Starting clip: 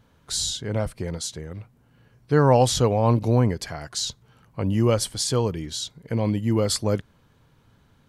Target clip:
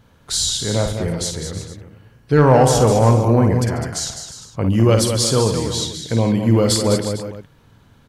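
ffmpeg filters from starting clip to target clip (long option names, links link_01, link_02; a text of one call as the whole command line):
ffmpeg -i in.wav -filter_complex "[0:a]asettb=1/sr,asplit=3[link_01][link_02][link_03];[link_01]atrim=end=2.484[link_04];[link_02]atrim=start=2.48:end=4.63,asetpts=PTS-STARTPTS,afade=type=in:duration=0.004:curve=qsin,afade=type=out:start_time=2.146:duration=0.004:curve=qsin,equalizer=frequency=3800:width_type=o:width=0.64:gain=-10[link_05];[link_03]atrim=start=4.626[link_06];[link_04][link_05]acrossfade=duration=0.004:curve1=hsin:curve2=qsin[link_07];[link_07][link_06]acrossfade=duration=0.004:curve1=qsin:curve2=hsin,aecho=1:1:53|140|204|319|354|453:0.447|0.141|0.398|0.15|0.2|0.119,acontrast=77,volume=-1dB" out.wav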